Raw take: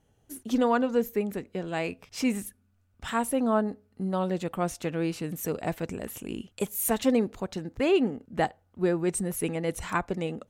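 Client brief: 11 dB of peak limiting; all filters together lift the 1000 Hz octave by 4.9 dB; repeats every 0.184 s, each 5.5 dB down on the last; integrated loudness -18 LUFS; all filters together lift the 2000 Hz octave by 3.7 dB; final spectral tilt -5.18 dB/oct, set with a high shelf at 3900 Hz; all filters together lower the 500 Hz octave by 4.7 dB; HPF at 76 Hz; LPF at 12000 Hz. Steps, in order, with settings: HPF 76 Hz; LPF 12000 Hz; bell 500 Hz -8.5 dB; bell 1000 Hz +8.5 dB; bell 2000 Hz +3.5 dB; high shelf 3900 Hz -5 dB; limiter -19 dBFS; feedback echo 0.184 s, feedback 53%, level -5.5 dB; gain +13 dB

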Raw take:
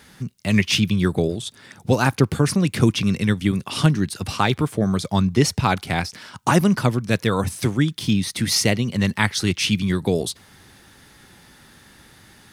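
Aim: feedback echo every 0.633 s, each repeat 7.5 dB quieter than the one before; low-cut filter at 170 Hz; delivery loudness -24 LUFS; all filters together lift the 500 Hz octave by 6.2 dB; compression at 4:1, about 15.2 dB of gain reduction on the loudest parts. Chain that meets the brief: HPF 170 Hz; bell 500 Hz +8 dB; compressor 4:1, threshold -28 dBFS; feedback echo 0.633 s, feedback 42%, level -7.5 dB; gain +6.5 dB

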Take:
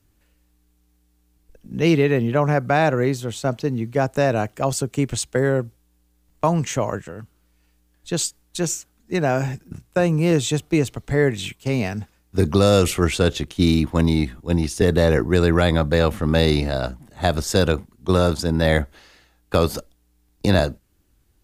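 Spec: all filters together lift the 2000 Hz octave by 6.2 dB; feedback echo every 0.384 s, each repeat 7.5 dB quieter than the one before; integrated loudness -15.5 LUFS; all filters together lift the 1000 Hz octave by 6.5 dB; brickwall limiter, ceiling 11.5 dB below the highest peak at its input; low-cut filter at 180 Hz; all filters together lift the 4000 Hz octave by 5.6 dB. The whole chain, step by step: HPF 180 Hz; bell 1000 Hz +8 dB; bell 2000 Hz +4 dB; bell 4000 Hz +5 dB; limiter -11 dBFS; feedback echo 0.384 s, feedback 42%, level -7.5 dB; gain +7.5 dB

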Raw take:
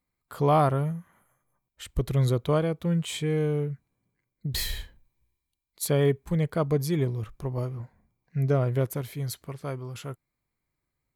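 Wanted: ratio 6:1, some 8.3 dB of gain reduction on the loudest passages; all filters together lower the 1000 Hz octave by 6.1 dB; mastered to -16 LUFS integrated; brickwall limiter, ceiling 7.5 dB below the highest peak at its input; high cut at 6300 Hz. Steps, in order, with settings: LPF 6300 Hz; bell 1000 Hz -9 dB; compressor 6:1, threshold -28 dBFS; gain +21 dB; limiter -5.5 dBFS

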